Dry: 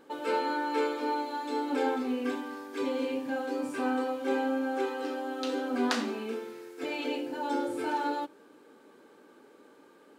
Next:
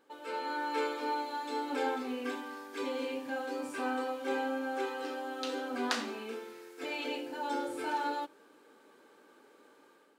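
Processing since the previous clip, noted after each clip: bass shelf 410 Hz -9 dB; level rider gain up to 7.5 dB; trim -8 dB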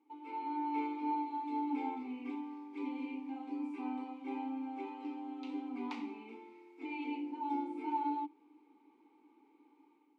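vowel filter u; trim +5 dB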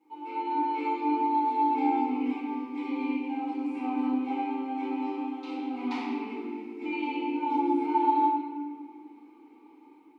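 reverberation RT60 1.7 s, pre-delay 4 ms, DRR -10.5 dB

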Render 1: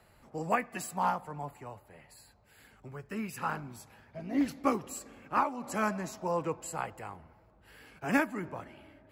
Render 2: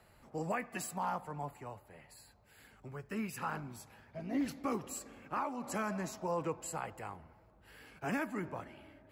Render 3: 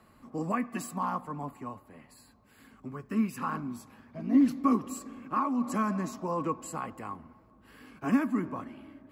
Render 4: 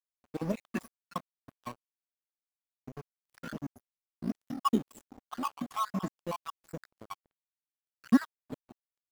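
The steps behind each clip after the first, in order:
peak limiter -25 dBFS, peak gain reduction 9.5 dB; trim -1.5 dB
small resonant body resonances 250/1100 Hz, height 15 dB, ringing for 40 ms
random holes in the spectrogram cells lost 70%; in parallel at -6 dB: decimation with a swept rate 10×, swing 60% 1.3 Hz; on the sum: crossover distortion -41 dBFS

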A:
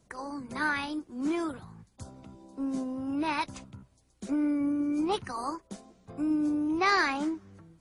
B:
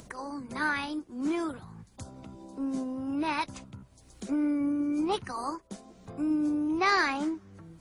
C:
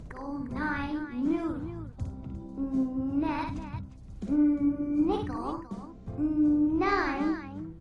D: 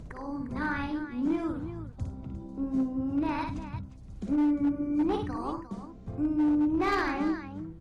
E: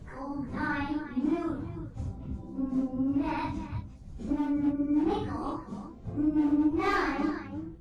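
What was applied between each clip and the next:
upward compressor, threshold -39 dBFS
RIAA curve playback; multi-tap echo 57/102/353 ms -4.5/-14/-11.5 dB; trim -4 dB
hard clipper -21.5 dBFS, distortion -19 dB
phase randomisation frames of 100 ms

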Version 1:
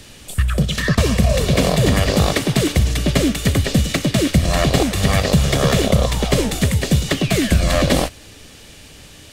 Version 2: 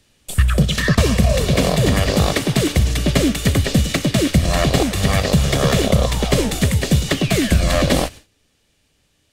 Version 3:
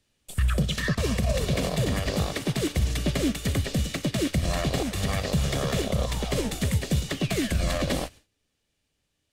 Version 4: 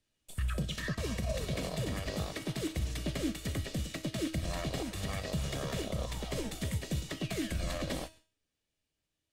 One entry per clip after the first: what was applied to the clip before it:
gate with hold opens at -27 dBFS; gain riding within 5 dB 2 s
peak limiter -9 dBFS, peak gain reduction 7.5 dB; upward expansion 1.5:1, over -30 dBFS; trim -5.5 dB
feedback comb 320 Hz, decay 0.39 s, harmonics all, mix 70%

